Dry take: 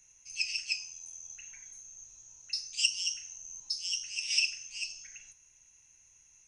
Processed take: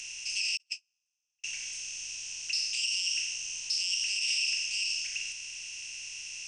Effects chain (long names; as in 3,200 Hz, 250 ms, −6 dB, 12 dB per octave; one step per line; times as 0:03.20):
compressor on every frequency bin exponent 0.4
0:00.57–0:01.44: noise gate −24 dBFS, range −47 dB
brickwall limiter −20 dBFS, peak gain reduction 9.5 dB